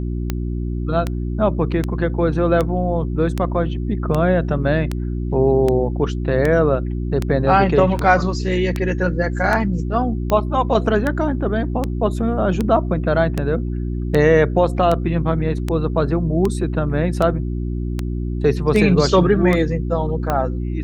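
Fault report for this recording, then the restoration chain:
hum 60 Hz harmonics 6 -23 dBFS
tick 78 rpm -8 dBFS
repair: de-click; de-hum 60 Hz, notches 6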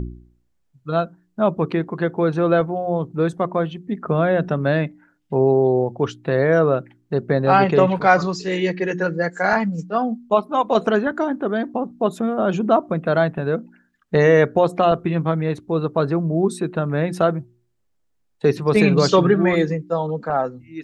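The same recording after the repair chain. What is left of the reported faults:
nothing left

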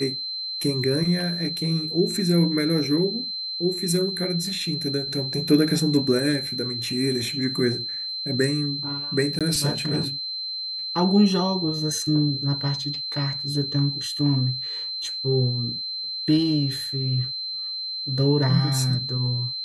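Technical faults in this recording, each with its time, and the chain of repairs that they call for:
whine 4.1 kHz -28 dBFS
9.39–9.41 s: dropout 17 ms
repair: band-stop 4.1 kHz, Q 30; interpolate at 9.39 s, 17 ms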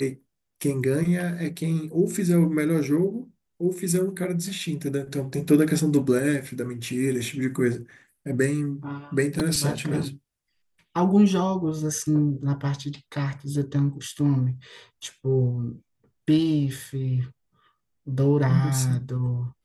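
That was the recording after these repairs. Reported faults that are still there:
nothing left

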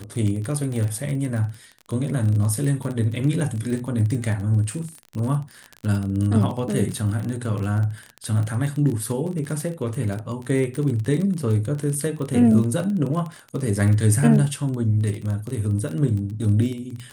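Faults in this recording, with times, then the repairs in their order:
crackle 27 per s -26 dBFS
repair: de-click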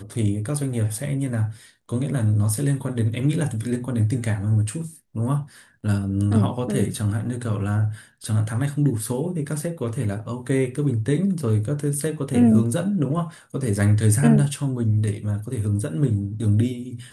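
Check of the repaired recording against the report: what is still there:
nothing left

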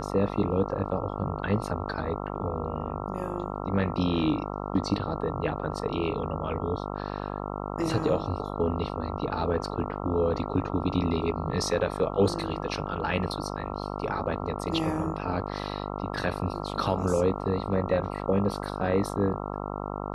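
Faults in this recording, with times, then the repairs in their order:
buzz 50 Hz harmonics 27 -34 dBFS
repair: de-hum 50 Hz, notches 27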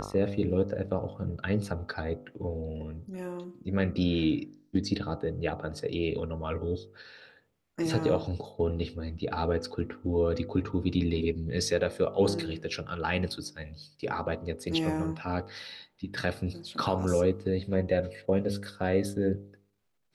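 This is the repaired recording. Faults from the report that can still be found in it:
nothing left

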